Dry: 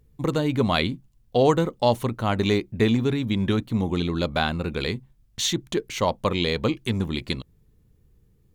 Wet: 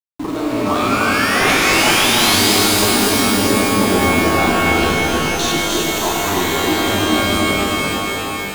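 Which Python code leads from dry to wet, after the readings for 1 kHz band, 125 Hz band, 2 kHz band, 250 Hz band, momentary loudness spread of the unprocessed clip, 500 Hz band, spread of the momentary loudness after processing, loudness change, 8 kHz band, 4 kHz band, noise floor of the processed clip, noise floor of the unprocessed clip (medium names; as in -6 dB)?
+12.0 dB, +2.0 dB, +16.5 dB, +7.5 dB, 8 LU, +6.0 dB, 7 LU, +10.0 dB, +18.5 dB, +13.5 dB, -23 dBFS, -61 dBFS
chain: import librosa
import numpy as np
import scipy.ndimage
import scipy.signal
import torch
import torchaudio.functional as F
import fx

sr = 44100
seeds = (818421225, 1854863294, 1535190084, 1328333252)

y = fx.bass_treble(x, sr, bass_db=-2, treble_db=-9)
y = fx.level_steps(y, sr, step_db=17)
y = fx.fixed_phaser(y, sr, hz=540.0, stages=6)
y = fx.fold_sine(y, sr, drive_db=14, ceiling_db=-12.5)
y = fx.spec_paint(y, sr, seeds[0], shape='rise', start_s=0.66, length_s=1.89, low_hz=1100.0, high_hz=5200.0, level_db=-22.0)
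y = np.where(np.abs(y) >= 10.0 ** (-26.5 / 20.0), y, 0.0)
y = fx.echo_feedback(y, sr, ms=306, feedback_pct=59, wet_db=-5)
y = fx.rev_shimmer(y, sr, seeds[1], rt60_s=3.6, semitones=12, shimmer_db=-2, drr_db=-2.0)
y = y * librosa.db_to_amplitude(-2.5)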